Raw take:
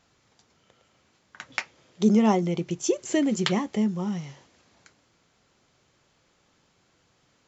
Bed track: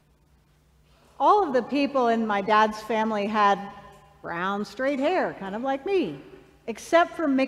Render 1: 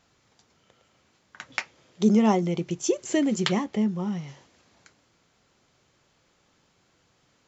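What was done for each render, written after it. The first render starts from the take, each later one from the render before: 3.64–4.28 s: distance through air 77 m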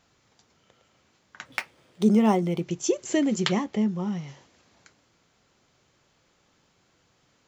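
1.45–2.63 s: decimation joined by straight lines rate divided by 3×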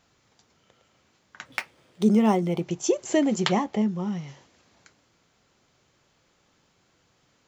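2.49–3.82 s: peaking EQ 780 Hz +7.5 dB 0.91 oct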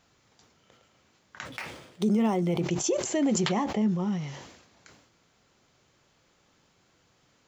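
peak limiter -18 dBFS, peak gain reduction 11 dB; decay stretcher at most 63 dB/s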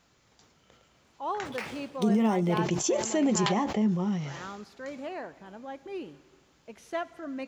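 add bed track -14 dB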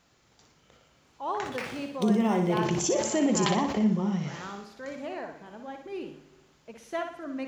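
flutter echo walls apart 10.3 m, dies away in 0.53 s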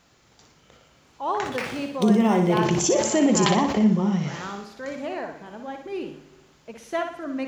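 trim +5.5 dB

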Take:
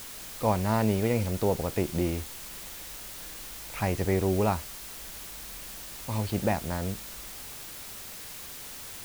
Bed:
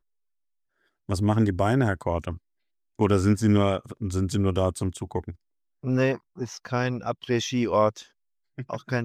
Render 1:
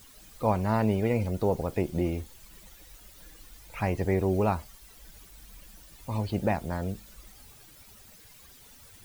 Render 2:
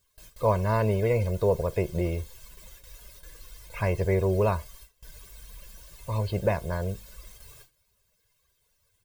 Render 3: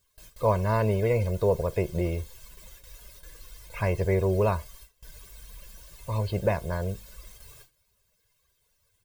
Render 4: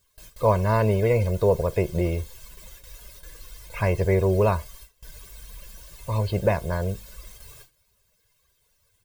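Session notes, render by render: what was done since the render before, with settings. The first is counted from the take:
noise reduction 14 dB, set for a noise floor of -42 dBFS
gate with hold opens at -40 dBFS; comb 1.9 ms, depth 77%
no audible change
trim +3.5 dB

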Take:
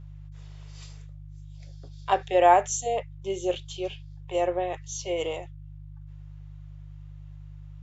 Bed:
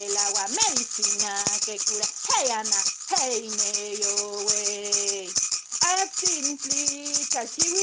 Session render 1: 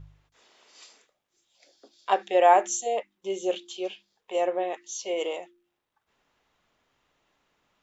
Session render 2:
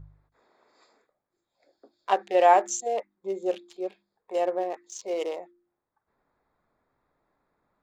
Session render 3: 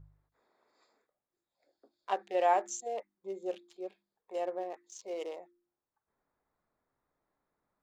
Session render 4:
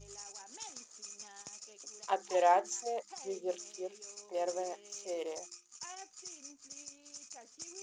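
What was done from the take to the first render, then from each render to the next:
de-hum 50 Hz, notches 7
local Wiener filter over 15 samples
trim -9 dB
add bed -24.5 dB

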